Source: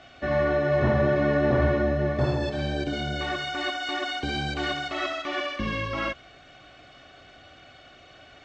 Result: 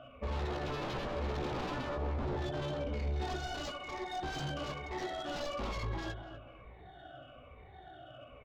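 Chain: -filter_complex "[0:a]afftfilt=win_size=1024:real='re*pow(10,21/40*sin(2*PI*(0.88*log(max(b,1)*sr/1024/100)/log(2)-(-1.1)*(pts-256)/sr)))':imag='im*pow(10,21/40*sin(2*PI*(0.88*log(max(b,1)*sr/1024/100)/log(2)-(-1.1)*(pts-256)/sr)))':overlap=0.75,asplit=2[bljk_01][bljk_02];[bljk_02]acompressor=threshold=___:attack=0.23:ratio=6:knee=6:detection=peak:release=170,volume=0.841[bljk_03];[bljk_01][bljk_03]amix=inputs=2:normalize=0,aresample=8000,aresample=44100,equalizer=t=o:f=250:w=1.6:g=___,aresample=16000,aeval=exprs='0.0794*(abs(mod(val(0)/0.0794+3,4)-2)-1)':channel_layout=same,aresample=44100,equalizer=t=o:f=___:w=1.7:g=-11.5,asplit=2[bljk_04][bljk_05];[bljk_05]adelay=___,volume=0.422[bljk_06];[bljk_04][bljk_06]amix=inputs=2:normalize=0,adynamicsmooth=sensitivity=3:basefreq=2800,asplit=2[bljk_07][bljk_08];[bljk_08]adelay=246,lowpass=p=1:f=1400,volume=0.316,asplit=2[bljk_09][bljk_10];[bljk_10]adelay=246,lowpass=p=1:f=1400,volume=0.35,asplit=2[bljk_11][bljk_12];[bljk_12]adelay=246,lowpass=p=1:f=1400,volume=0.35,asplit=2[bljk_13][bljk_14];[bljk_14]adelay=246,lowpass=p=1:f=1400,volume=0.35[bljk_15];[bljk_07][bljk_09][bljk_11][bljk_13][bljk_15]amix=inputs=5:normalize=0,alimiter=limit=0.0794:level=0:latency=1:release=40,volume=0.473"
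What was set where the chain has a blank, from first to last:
0.0398, -7, 2000, 16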